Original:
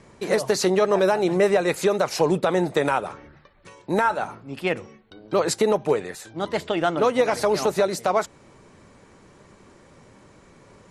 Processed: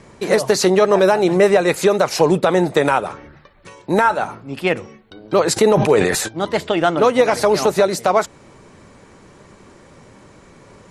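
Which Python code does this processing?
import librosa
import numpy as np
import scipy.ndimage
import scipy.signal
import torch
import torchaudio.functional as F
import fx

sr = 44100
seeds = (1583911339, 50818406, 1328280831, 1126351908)

y = fx.sustainer(x, sr, db_per_s=39.0, at=(5.56, 6.27), fade=0.02)
y = y * 10.0 ** (6.0 / 20.0)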